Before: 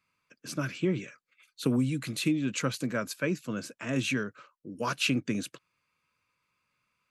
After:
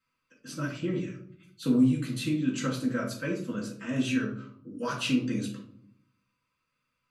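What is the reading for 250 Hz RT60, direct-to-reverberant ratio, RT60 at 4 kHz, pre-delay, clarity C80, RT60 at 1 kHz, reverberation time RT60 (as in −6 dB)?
1.0 s, −4.5 dB, 0.40 s, 4 ms, 11.0 dB, 0.60 s, 0.70 s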